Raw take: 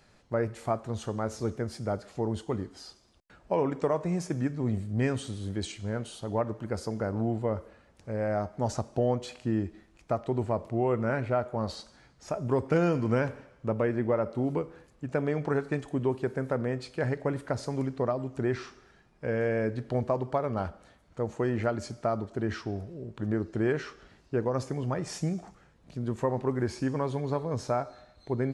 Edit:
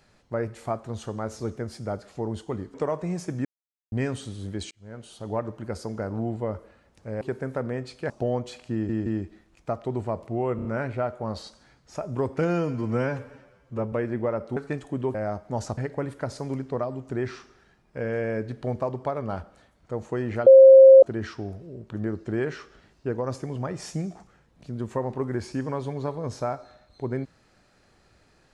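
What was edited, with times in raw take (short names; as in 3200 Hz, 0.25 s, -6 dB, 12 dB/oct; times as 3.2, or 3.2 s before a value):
2.74–3.76 cut
4.47–4.94 mute
5.73–6.32 fade in
8.23–8.86 swap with 16.16–17.05
9.48 stutter 0.17 s, 3 plays
10.98 stutter 0.03 s, 4 plays
12.83–13.78 stretch 1.5×
14.42–15.58 cut
21.74–22.3 bleep 533 Hz -6.5 dBFS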